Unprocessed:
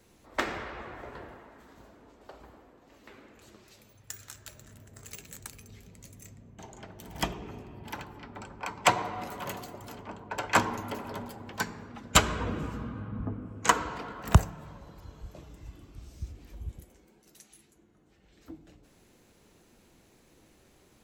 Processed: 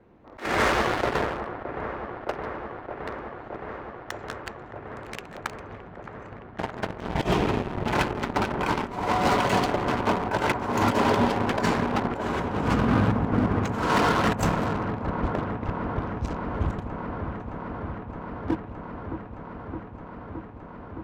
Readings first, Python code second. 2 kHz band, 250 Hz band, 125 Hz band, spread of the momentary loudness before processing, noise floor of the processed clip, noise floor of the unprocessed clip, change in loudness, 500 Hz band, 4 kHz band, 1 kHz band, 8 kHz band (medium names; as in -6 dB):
+6.0 dB, +12.5 dB, +6.5 dB, 24 LU, -43 dBFS, -62 dBFS, +5.0 dB, +11.5 dB, +2.0 dB, +7.5 dB, -6.0 dB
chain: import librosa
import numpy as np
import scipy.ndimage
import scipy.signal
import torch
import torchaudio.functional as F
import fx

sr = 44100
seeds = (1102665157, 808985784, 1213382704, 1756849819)

p1 = fx.env_lowpass(x, sr, base_hz=1300.0, full_db=-29.5)
p2 = fx.lowpass(p1, sr, hz=4000.0, slope=6)
p3 = fx.low_shelf(p2, sr, hz=71.0, db=-8.0)
p4 = fx.leveller(p3, sr, passes=3)
p5 = fx.over_compress(p4, sr, threshold_db=-30.0, ratio=-0.5)
p6 = 10.0 ** (-20.5 / 20.0) * np.tanh(p5 / 10.0 ** (-20.5 / 20.0))
p7 = p6 + fx.echo_wet_lowpass(p6, sr, ms=617, feedback_pct=84, hz=1500.0, wet_db=-9.0, dry=0)
y = p7 * 10.0 ** (7.5 / 20.0)